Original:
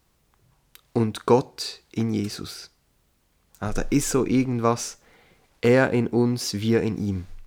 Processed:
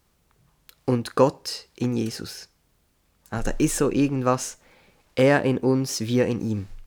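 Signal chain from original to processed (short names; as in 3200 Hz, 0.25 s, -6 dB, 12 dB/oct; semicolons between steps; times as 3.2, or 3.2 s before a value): speed mistake 44.1 kHz file played as 48 kHz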